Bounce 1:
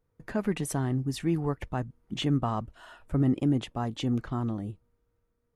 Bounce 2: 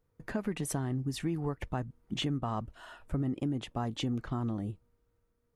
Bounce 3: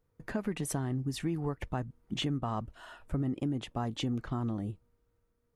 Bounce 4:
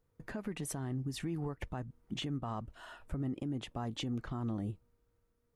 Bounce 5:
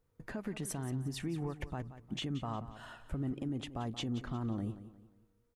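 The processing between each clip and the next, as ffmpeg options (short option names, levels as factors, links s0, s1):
-af "acompressor=threshold=0.0355:ratio=6"
-af anull
-af "alimiter=level_in=1.58:limit=0.0631:level=0:latency=1:release=171,volume=0.631,volume=0.891"
-af "aecho=1:1:178|356|534|712:0.211|0.0782|0.0289|0.0107"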